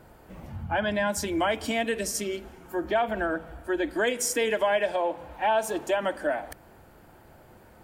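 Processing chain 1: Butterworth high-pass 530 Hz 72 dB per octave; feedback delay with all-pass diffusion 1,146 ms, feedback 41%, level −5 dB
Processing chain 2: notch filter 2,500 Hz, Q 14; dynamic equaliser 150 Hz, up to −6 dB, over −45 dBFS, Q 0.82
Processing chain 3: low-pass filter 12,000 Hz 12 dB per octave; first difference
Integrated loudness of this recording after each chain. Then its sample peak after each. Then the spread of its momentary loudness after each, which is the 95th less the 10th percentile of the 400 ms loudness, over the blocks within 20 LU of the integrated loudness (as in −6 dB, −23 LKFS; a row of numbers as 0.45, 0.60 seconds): −28.5, −28.5, −37.0 LKFS; −13.5, −15.0, −17.0 dBFS; 8, 10, 21 LU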